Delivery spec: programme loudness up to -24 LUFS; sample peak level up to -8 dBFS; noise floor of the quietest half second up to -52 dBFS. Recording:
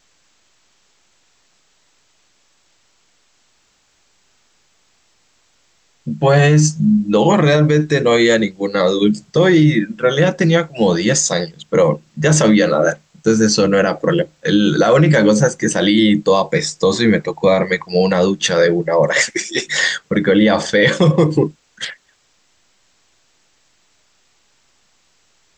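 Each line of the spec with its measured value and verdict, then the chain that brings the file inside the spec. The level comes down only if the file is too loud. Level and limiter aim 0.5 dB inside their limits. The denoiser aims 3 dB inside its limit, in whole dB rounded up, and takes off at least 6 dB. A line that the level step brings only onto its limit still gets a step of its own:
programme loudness -14.5 LUFS: fail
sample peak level -3.5 dBFS: fail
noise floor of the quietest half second -59 dBFS: OK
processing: gain -10 dB

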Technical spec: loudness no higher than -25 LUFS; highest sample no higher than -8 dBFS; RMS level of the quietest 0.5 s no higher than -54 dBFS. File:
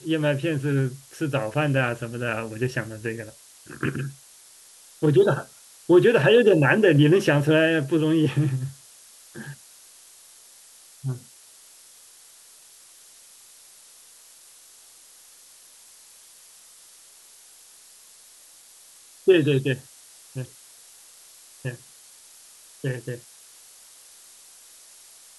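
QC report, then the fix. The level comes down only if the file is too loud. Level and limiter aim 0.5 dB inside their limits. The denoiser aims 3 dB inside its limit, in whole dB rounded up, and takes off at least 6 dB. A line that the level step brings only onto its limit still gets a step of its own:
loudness -22.0 LUFS: fail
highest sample -6.0 dBFS: fail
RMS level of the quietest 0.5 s -51 dBFS: fail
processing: gain -3.5 dB

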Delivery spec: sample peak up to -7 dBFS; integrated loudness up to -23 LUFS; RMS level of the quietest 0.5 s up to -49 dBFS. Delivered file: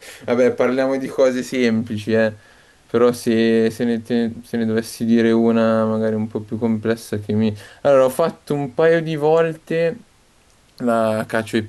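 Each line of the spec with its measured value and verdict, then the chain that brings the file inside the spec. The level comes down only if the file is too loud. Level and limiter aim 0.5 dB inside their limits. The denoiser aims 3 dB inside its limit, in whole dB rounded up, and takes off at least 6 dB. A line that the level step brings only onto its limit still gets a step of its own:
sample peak -5.5 dBFS: fail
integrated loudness -19.0 LUFS: fail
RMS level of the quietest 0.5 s -54 dBFS: OK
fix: gain -4.5 dB

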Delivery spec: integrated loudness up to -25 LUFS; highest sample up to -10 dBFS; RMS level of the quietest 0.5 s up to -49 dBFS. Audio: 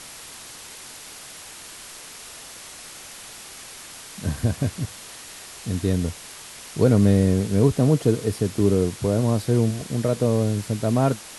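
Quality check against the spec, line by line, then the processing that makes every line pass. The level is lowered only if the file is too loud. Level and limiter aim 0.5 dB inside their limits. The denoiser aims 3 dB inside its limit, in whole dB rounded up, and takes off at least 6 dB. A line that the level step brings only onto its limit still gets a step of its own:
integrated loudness -22.0 LUFS: fail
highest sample -5.5 dBFS: fail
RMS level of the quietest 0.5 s -41 dBFS: fail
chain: denoiser 8 dB, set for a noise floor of -41 dBFS; gain -3.5 dB; limiter -10.5 dBFS

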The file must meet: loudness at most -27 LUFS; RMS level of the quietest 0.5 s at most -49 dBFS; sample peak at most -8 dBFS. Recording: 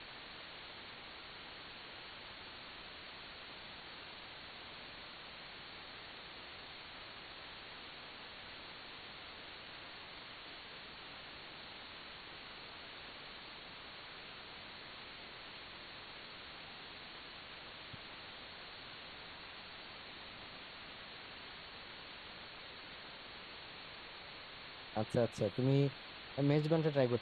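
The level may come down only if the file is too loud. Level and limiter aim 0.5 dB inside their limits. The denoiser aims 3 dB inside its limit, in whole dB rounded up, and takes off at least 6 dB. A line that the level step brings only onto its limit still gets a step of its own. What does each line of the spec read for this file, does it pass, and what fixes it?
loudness -44.5 LUFS: OK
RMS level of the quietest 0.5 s -52 dBFS: OK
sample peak -19.0 dBFS: OK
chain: none

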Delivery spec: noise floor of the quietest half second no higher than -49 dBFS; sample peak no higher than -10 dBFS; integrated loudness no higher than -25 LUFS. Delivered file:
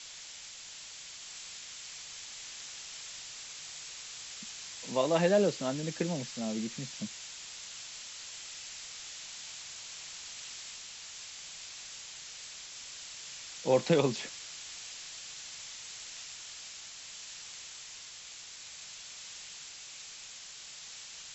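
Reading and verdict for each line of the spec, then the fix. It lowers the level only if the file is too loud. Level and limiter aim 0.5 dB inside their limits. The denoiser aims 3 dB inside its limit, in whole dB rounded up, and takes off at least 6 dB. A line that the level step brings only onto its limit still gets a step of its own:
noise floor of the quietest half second -48 dBFS: fail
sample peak -14.0 dBFS: OK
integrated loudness -37.5 LUFS: OK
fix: denoiser 6 dB, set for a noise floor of -48 dBFS

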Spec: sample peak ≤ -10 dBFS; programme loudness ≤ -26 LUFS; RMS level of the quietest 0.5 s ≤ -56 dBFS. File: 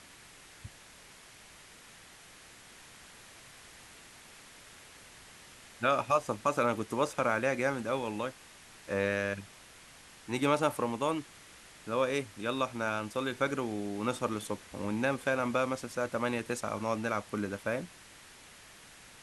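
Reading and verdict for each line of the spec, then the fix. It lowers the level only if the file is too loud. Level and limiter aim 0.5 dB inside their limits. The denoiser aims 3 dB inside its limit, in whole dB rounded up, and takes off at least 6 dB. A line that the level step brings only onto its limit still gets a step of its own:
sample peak -13.5 dBFS: OK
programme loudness -32.5 LUFS: OK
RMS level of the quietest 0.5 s -54 dBFS: fail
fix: denoiser 6 dB, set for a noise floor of -54 dBFS

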